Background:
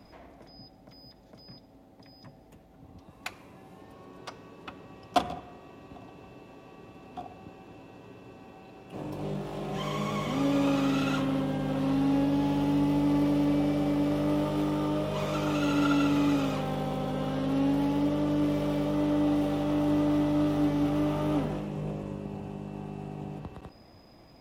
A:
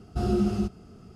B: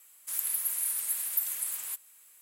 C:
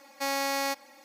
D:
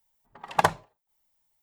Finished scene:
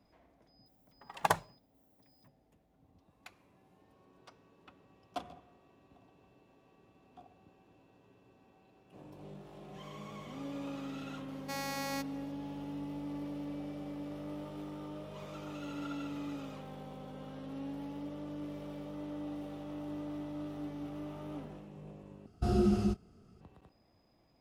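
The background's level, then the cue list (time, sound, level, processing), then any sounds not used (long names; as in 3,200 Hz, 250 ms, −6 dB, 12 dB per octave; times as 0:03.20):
background −15.5 dB
0:00.66: mix in D −8 dB + high-shelf EQ 9,500 Hz +9 dB
0:11.28: mix in C −9.5 dB
0:22.26: overwrite with A −3.5 dB + noise gate −37 dBFS, range −8 dB
not used: B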